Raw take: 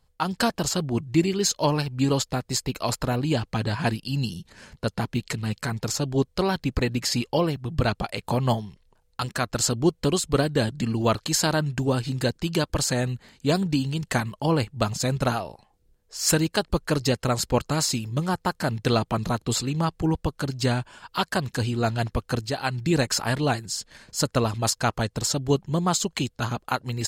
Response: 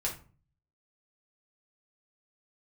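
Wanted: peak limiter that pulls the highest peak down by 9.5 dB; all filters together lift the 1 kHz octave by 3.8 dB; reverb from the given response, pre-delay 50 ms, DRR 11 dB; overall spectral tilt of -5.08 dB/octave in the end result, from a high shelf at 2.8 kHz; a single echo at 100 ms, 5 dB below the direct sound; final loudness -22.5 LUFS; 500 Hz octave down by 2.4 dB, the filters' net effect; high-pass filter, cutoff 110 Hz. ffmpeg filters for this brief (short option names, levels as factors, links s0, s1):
-filter_complex "[0:a]highpass=110,equalizer=f=500:t=o:g=-5,equalizer=f=1000:t=o:g=7.5,highshelf=f=2800:g=-7,alimiter=limit=0.158:level=0:latency=1,aecho=1:1:100:0.562,asplit=2[s0][s1];[1:a]atrim=start_sample=2205,adelay=50[s2];[s1][s2]afir=irnorm=-1:irlink=0,volume=0.178[s3];[s0][s3]amix=inputs=2:normalize=0,volume=1.78"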